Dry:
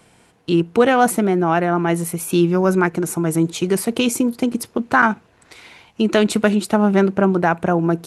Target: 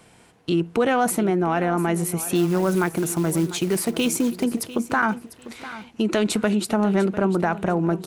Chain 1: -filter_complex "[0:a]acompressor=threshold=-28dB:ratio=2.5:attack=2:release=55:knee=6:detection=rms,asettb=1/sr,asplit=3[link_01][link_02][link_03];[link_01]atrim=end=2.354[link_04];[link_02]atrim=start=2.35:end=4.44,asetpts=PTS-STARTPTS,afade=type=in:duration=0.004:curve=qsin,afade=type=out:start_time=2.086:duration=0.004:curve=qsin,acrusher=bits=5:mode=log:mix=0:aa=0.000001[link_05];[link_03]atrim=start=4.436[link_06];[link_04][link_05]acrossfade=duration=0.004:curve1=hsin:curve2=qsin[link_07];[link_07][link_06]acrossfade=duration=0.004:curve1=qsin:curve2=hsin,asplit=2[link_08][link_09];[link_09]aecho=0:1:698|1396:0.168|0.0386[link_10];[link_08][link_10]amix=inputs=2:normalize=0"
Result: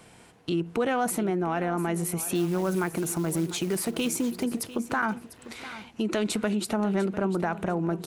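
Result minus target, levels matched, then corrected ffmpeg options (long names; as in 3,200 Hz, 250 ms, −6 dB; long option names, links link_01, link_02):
downward compressor: peak gain reduction +6 dB
-filter_complex "[0:a]acompressor=threshold=-18dB:ratio=2.5:attack=2:release=55:knee=6:detection=rms,asettb=1/sr,asplit=3[link_01][link_02][link_03];[link_01]atrim=end=2.354[link_04];[link_02]atrim=start=2.35:end=4.44,asetpts=PTS-STARTPTS,afade=type=in:duration=0.004:curve=qsin,afade=type=out:start_time=2.086:duration=0.004:curve=qsin,acrusher=bits=5:mode=log:mix=0:aa=0.000001[link_05];[link_03]atrim=start=4.436[link_06];[link_04][link_05]acrossfade=duration=0.004:curve1=hsin:curve2=qsin[link_07];[link_07][link_06]acrossfade=duration=0.004:curve1=qsin:curve2=hsin,asplit=2[link_08][link_09];[link_09]aecho=0:1:698|1396:0.168|0.0386[link_10];[link_08][link_10]amix=inputs=2:normalize=0"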